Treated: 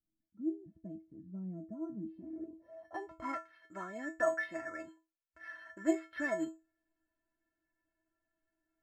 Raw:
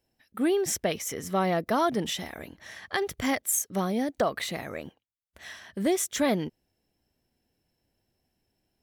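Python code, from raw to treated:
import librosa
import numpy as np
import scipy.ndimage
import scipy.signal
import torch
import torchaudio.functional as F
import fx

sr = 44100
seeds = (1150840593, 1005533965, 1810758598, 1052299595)

y = fx.stiff_resonator(x, sr, f0_hz=320.0, decay_s=0.27, stiffness=0.008)
y = (np.kron(scipy.signal.resample_poly(y, 1, 6), np.eye(6)[0]) * 6)[:len(y)]
y = fx.filter_sweep_lowpass(y, sr, from_hz=190.0, to_hz=1600.0, start_s=1.99, end_s=3.45, q=4.0)
y = y * librosa.db_to_amplitude(5.0)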